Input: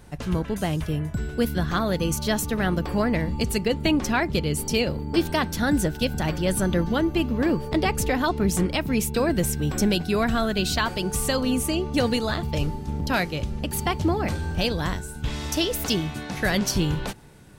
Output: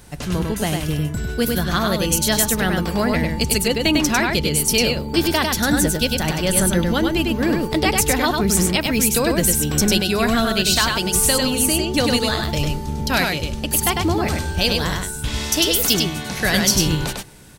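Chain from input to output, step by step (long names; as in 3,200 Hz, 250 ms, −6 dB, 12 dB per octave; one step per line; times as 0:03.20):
high-shelf EQ 2,800 Hz +9.5 dB
on a send: single-tap delay 100 ms −3.5 dB
on the sum: level +2 dB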